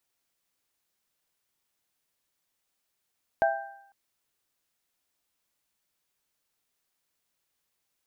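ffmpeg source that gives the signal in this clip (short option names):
-f lavfi -i "aevalsrc='0.112*pow(10,-3*t/0.51)*sin(2*PI*666*t)+0.0708*pow(10,-3*t/0.8)*sin(2*PI*795*t)+0.0447*pow(10,-3*t/0.74)*sin(2*PI*1570*t)':d=0.5:s=44100"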